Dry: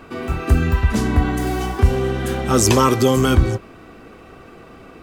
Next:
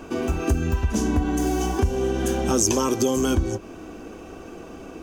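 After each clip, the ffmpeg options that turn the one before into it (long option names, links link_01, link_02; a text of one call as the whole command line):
ffmpeg -i in.wav -af "equalizer=frequency=125:width_type=o:width=0.33:gain=-11,equalizer=frequency=315:width_type=o:width=0.33:gain=5,equalizer=frequency=1250:width_type=o:width=0.33:gain=-7,equalizer=frequency=2000:width_type=o:width=0.33:gain=-10,equalizer=frequency=4000:width_type=o:width=0.33:gain=-6,equalizer=frequency=6300:width_type=o:width=0.33:gain=10,acompressor=threshold=-23dB:ratio=3,volume=2.5dB" out.wav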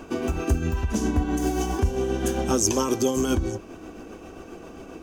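ffmpeg -i in.wav -af "tremolo=f=7.5:d=0.4" out.wav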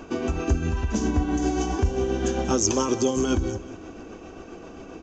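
ffmpeg -i in.wav -af "aecho=1:1:187|374|561|748:0.141|0.0593|0.0249|0.0105,aresample=16000,aresample=44100" out.wav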